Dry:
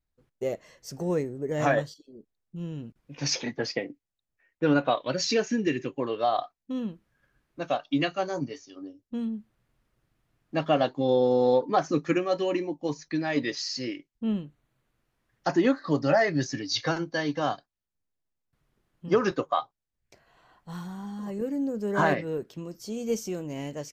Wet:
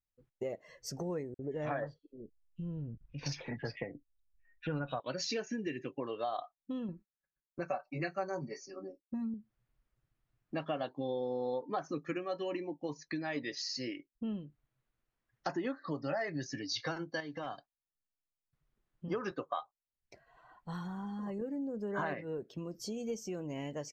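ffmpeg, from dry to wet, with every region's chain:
-filter_complex "[0:a]asettb=1/sr,asplit=3[a][b][c];[a]atrim=end=1.344[d];[b]atrim=start=1.34:end=5,asetpts=PTS-STARTPTS,afade=t=in:d=0.004:c=qsin,afade=t=out:st=3.656:d=0.004:c=qsin,asubboost=boost=9.5:cutoff=110,adynamicsmooth=sensitivity=1:basefreq=3.9k,acrossover=split=2300[e][f];[e]adelay=50[g];[g][f]amix=inputs=2:normalize=0,atrim=end_sample=161406[h];[c]atrim=start=4.996[i];[d][h]acrossfade=d=0.004:c1=hsin:c2=qsin[j];[j][i]acrossfade=d=0.004:c1=qsin:c2=hsin,asettb=1/sr,asplit=3[k][l][m];[k]atrim=end=6.884[n];[l]atrim=start=6.88:end=9.34,asetpts=PTS-STARTPTS,afade=t=in:d=0.004:c=qsin,afade=t=out:st=2.456:d=0.004:c=qsin,aecho=1:1:5.3:0.93,atrim=end_sample=108486,agate=range=-33dB:threshold=-54dB:ratio=3:release=100:detection=peak,asuperstop=centerf=3300:order=12:qfactor=2.4[o];[m]atrim=start=9.336[p];[n][o]acrossfade=d=0.004:c1=hsin:c2=qsin[q];[q][p]acrossfade=d=0.004:c1=qsin:c2=hsin,asettb=1/sr,asplit=3[r][s][t];[r]atrim=end=17.204[u];[s]atrim=start=17.2:end=19.1,asetpts=PTS-STARTPTS,afade=t=in:d=0.004:c=qsin,afade=t=out:st=1.896:d=0.004:c=qsin,volume=17.5dB,asoftclip=hard,volume=-17.5dB,acompressor=threshold=-36dB:ratio=2.5:attack=3.2:release=140:knee=1:detection=peak[v];[t]atrim=start=19.096[w];[u][v]acrossfade=d=0.004:c1=hsin:c2=qsin[x];[x][w]acrossfade=d=0.004:c1=qsin:c2=hsin,acompressor=threshold=-39dB:ratio=3,equalizer=f=1.6k:t=o:w=2.8:g=2.5,afftdn=nr=13:nf=-56"

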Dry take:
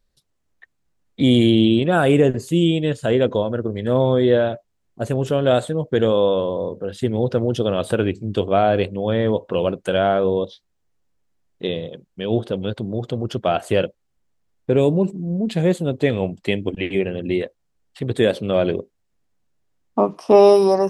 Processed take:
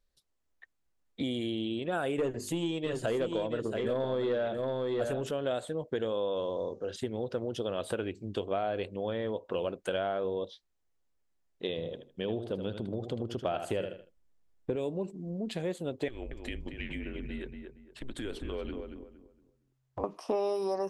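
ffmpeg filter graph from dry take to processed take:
-filter_complex "[0:a]asettb=1/sr,asplit=3[a][b][c];[a]atrim=end=2.184[d];[b]atrim=start=2.18:end=5.31,asetpts=PTS-STARTPTS,afade=t=in:d=0.004:c=qsin,afade=t=out:st=3.126:d=0.004:c=qsin,acontrast=78,bandreject=f=50:t=h:w=6,bandreject=f=100:t=h:w=6,bandreject=f=150:t=h:w=6,bandreject=f=200:t=h:w=6,bandreject=f=250:t=h:w=6,bandreject=f=300:t=h:w=6,bandreject=f=350:t=h:w=6,aecho=1:1:678:0.398,atrim=end_sample=138033[e];[c]atrim=start=5.306[f];[d][e]acrossfade=d=0.004:c1=hsin:c2=qsin[g];[g][f]acrossfade=d=0.004:c1=qsin:c2=hsin,asettb=1/sr,asplit=3[h][i][j];[h]atrim=end=6.364[k];[i]atrim=start=6.36:end=6.96,asetpts=PTS-STARTPTS,afade=t=in:d=0.004:c=qsin,afade=t=out:st=0.596:d=0.004:c=qsin,lowpass=f=6.2k:t=q:w=4,bandreject=f=193.7:t=h:w=4,bandreject=f=387.4:t=h:w=4,bandreject=f=581.1:t=h:w=4,bandreject=f=774.8:t=h:w=4,bandreject=f=968.5:t=h:w=4,bandreject=f=1.1622k:t=h:w=4,bandreject=f=1.3559k:t=h:w=4,bandreject=f=1.5496k:t=h:w=4,bandreject=f=1.7433k:t=h:w=4,bandreject=f=1.937k:t=h:w=4,bandreject=f=2.1307k:t=h:w=4,bandreject=f=2.3244k:t=h:w=4,bandreject=f=2.5181k:t=h:w=4[l];[j]atrim=start=6.956[m];[k][l]acrossfade=d=0.004:c1=hsin:c2=qsin[n];[n][m]acrossfade=d=0.004:c1=qsin:c2=hsin,asettb=1/sr,asplit=3[o][p][q];[o]atrim=end=11.784[r];[p]atrim=start=11.78:end=14.76,asetpts=PTS-STARTPTS,afade=t=in:d=0.004:c=qsin,afade=t=out:st=2.976:d=0.004:c=qsin,lowshelf=f=480:g=6,aecho=1:1:78|156|234:0.335|0.077|0.0177,atrim=end_sample=131418[s];[q]atrim=start=14.756[t];[r][s]acrossfade=d=0.004:c1=hsin:c2=qsin[u];[u][t]acrossfade=d=0.004:c1=qsin:c2=hsin,asettb=1/sr,asplit=3[v][w][x];[v]atrim=end=16.084[y];[w]atrim=start=16.08:end=20.04,asetpts=PTS-STARTPTS,afade=t=in:d=0.004:c=qsin,afade=t=out:st=3.956:d=0.004:c=qsin,afreqshift=-130,acompressor=threshold=-26dB:ratio=4:attack=3.2:release=140:knee=1:detection=peak,asplit=2[z][aa];[aa]adelay=231,lowpass=f=1.8k:p=1,volume=-5.5dB,asplit=2[ab][ac];[ac]adelay=231,lowpass=f=1.8k:p=1,volume=0.3,asplit=2[ad][ae];[ae]adelay=231,lowpass=f=1.8k:p=1,volume=0.3,asplit=2[af][ag];[ag]adelay=231,lowpass=f=1.8k:p=1,volume=0.3[ah];[z][ab][ad][af][ah]amix=inputs=5:normalize=0,atrim=end_sample=174636[ai];[x]atrim=start=20.036[aj];[y][ai]acrossfade=d=0.004:c1=hsin:c2=qsin[ak];[ak][aj]acrossfade=d=0.004:c1=qsin:c2=hsin,acompressor=threshold=-20dB:ratio=6,equalizer=f=140:t=o:w=1.5:g=-8,volume=-7dB"

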